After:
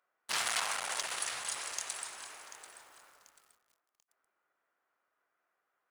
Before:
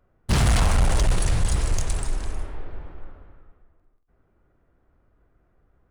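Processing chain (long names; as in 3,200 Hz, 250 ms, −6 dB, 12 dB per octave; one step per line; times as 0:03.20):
high-pass filter 1,100 Hz 12 dB per octave
feedback echo at a low word length 738 ms, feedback 35%, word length 8 bits, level −13 dB
level −4 dB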